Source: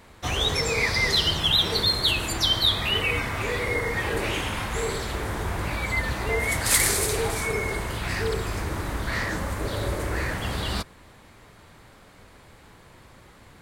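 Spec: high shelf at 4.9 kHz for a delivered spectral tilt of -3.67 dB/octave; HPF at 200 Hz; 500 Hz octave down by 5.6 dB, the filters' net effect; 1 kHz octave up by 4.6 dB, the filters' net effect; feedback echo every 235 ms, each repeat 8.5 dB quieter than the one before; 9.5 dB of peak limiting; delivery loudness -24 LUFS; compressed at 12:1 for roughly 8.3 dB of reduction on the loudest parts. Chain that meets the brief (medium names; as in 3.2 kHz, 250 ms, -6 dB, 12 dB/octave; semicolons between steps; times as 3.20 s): high-pass 200 Hz; peaking EQ 500 Hz -8.5 dB; peaking EQ 1 kHz +8 dB; treble shelf 4.9 kHz -5 dB; compression 12:1, threshold -27 dBFS; peak limiter -26 dBFS; feedback delay 235 ms, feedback 38%, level -8.5 dB; trim +9 dB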